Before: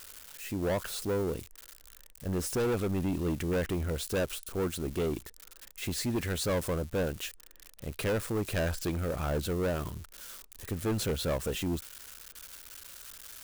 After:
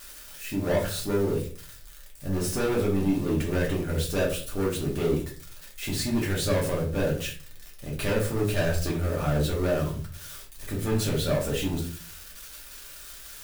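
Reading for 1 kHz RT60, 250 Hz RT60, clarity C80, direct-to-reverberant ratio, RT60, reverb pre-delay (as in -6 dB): 0.35 s, 0.60 s, 12.5 dB, -4.0 dB, 0.45 s, 3 ms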